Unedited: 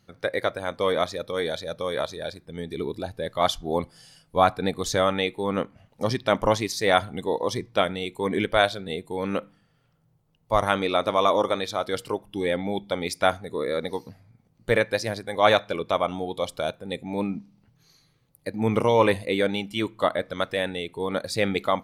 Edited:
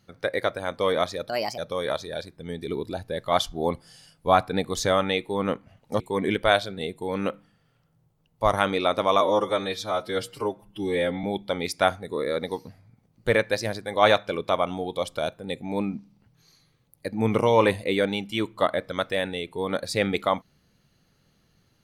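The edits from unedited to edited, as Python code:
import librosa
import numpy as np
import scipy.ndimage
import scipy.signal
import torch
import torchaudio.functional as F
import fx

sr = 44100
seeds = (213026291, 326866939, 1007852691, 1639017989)

y = fx.edit(x, sr, fx.speed_span(start_s=1.29, length_s=0.38, speed=1.31),
    fx.cut(start_s=6.09, length_s=2.0),
    fx.stretch_span(start_s=11.3, length_s=1.35, factor=1.5), tone=tone)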